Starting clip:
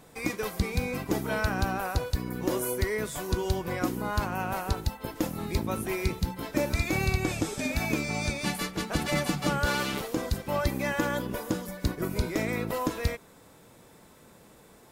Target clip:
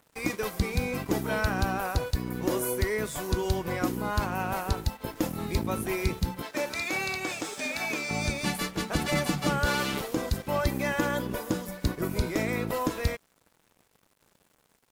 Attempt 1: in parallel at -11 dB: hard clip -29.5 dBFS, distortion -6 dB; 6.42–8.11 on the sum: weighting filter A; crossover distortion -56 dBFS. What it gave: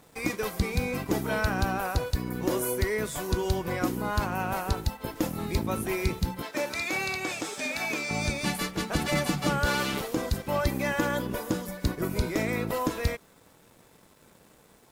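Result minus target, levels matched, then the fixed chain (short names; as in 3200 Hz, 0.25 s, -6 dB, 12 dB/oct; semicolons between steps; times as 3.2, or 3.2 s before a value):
crossover distortion: distortion -7 dB
in parallel at -11 dB: hard clip -29.5 dBFS, distortion -6 dB; 6.42–8.11 on the sum: weighting filter A; crossover distortion -48.5 dBFS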